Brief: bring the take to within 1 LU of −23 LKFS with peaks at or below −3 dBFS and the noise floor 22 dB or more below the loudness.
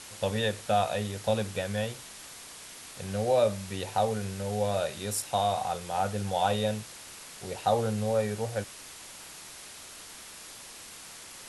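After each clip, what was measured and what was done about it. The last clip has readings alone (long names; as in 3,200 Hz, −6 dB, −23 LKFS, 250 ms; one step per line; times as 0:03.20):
background noise floor −47 dBFS; target noise floor −52 dBFS; integrated loudness −30.0 LKFS; sample peak −11.5 dBFS; target loudness −23.0 LKFS
→ noise reduction from a noise print 6 dB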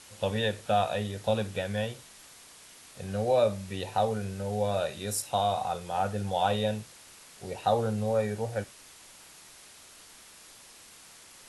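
background noise floor −53 dBFS; integrated loudness −30.0 LKFS; sample peak −11.5 dBFS; target loudness −23.0 LKFS
→ level +7 dB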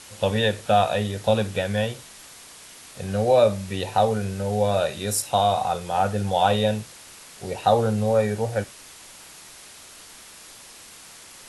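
integrated loudness −23.0 LKFS; sample peak −4.5 dBFS; background noise floor −46 dBFS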